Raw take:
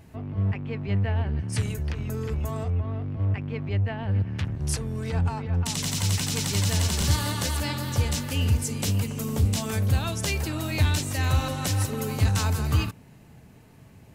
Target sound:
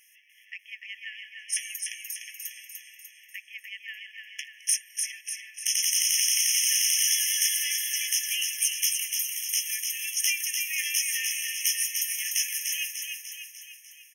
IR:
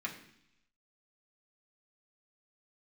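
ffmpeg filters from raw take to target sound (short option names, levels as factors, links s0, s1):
-filter_complex "[0:a]highshelf=f=10000:g=-5.5,asplit=2[s0][s1];[s1]aecho=0:1:297|594|891|1188|1485|1782|2079:0.562|0.309|0.17|0.0936|0.0515|0.0283|0.0156[s2];[s0][s2]amix=inputs=2:normalize=0,crystalizer=i=8:c=0,aeval=exprs='1.33*(cos(1*acos(clip(val(0)/1.33,-1,1)))-cos(1*PI/2))+0.133*(cos(2*acos(clip(val(0)/1.33,-1,1)))-cos(2*PI/2))':c=same,afftfilt=real='re*eq(mod(floor(b*sr/1024/1700),2),1)':imag='im*eq(mod(floor(b*sr/1024/1700),2),1)':win_size=1024:overlap=0.75,volume=0.473"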